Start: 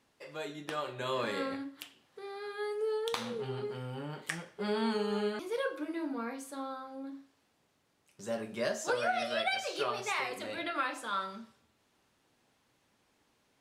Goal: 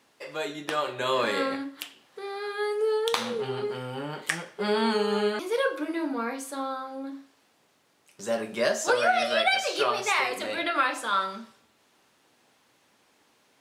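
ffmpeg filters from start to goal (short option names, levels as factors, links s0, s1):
-af "highpass=f=280:p=1,volume=2.82"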